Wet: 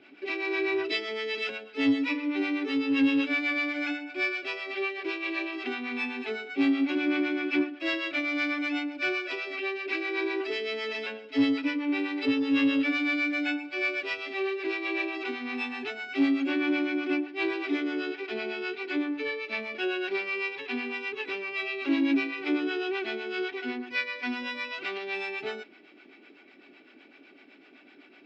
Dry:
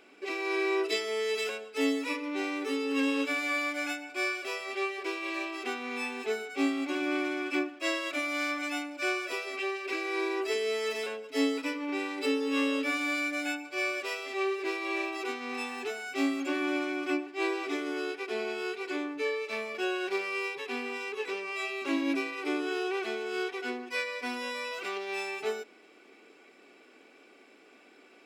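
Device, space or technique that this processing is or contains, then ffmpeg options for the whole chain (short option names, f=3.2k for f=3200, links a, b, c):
guitar amplifier with harmonic tremolo: -filter_complex "[0:a]acrossover=split=560[a][b];[a]aeval=exprs='val(0)*(1-0.7/2+0.7/2*cos(2*PI*7.9*n/s))':c=same[c];[b]aeval=exprs='val(0)*(1-0.7/2-0.7/2*cos(2*PI*7.9*n/s))':c=same[d];[c][d]amix=inputs=2:normalize=0,asoftclip=type=tanh:threshold=-24dB,highpass=100,equalizer=f=120:t=q:w=4:g=6,equalizer=f=280:t=q:w=4:g=4,equalizer=f=480:t=q:w=4:g=-10,equalizer=f=740:t=q:w=4:g=-3,equalizer=f=1.1k:t=q:w=4:g=-8,lowpass=f=4.3k:w=0.5412,lowpass=f=4.3k:w=1.3066,volume=7dB"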